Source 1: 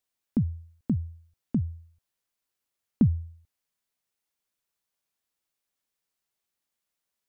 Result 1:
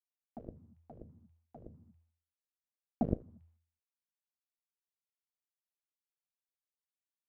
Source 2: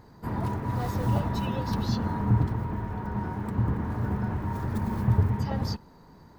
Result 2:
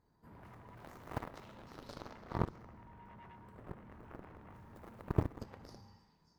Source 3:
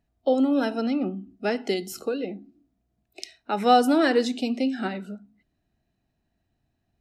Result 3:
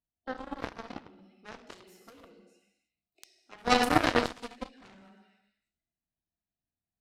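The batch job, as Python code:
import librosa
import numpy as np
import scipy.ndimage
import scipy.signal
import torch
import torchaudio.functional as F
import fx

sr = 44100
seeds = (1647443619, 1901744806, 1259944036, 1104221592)

y = fx.echo_stepped(x, sr, ms=199, hz=1000.0, octaves=1.4, feedback_pct=70, wet_db=-5)
y = fx.rev_gated(y, sr, seeds[0], gate_ms=370, shape='falling', drr_db=0.0)
y = fx.cheby_harmonics(y, sr, harmonics=(3,), levels_db=(-9,), full_scale_db=-6.0)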